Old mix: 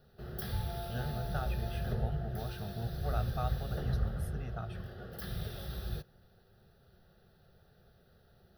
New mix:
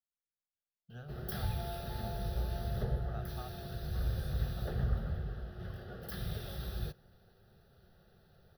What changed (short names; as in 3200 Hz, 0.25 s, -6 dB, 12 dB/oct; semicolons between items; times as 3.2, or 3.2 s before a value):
speech -10.0 dB; background: entry +0.90 s